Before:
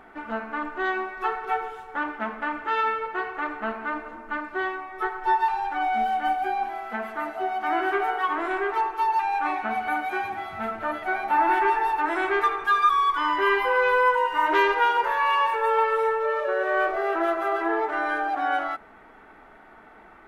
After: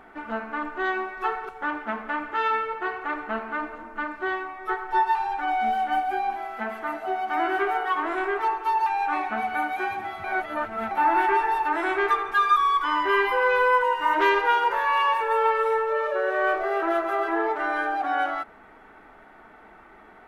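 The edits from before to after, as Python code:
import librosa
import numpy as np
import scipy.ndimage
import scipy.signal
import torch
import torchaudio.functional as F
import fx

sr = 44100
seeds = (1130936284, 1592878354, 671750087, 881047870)

y = fx.edit(x, sr, fx.cut(start_s=1.49, length_s=0.33),
    fx.reverse_span(start_s=10.57, length_s=0.67), tone=tone)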